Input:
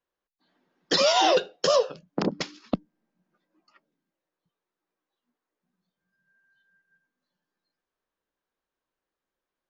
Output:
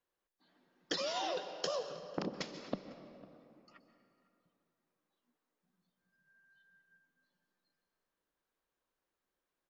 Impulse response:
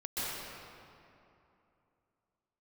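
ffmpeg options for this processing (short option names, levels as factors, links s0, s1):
-filter_complex "[0:a]acompressor=threshold=0.0224:ratio=12,asplit=2[s0][s1];[s1]adelay=501.5,volume=0.0891,highshelf=f=4000:g=-11.3[s2];[s0][s2]amix=inputs=2:normalize=0,asplit=2[s3][s4];[1:a]atrim=start_sample=2205[s5];[s4][s5]afir=irnorm=-1:irlink=0,volume=0.211[s6];[s3][s6]amix=inputs=2:normalize=0,volume=0.75"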